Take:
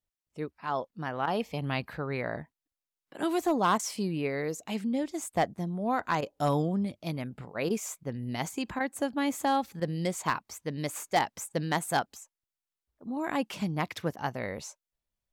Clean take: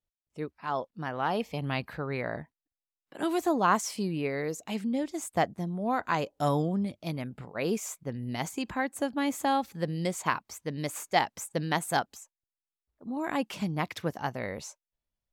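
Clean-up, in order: clip repair -17.5 dBFS; interpolate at 1.26/3.78/6.21/7.69/8.79/9.8/14.16, 12 ms

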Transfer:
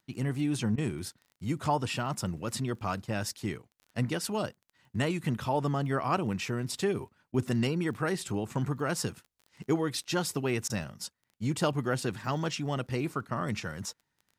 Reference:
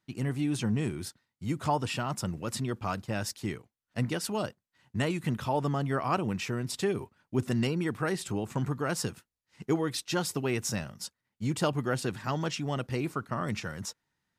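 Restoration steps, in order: de-click; interpolate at 0.76/7.32/10.68, 18 ms

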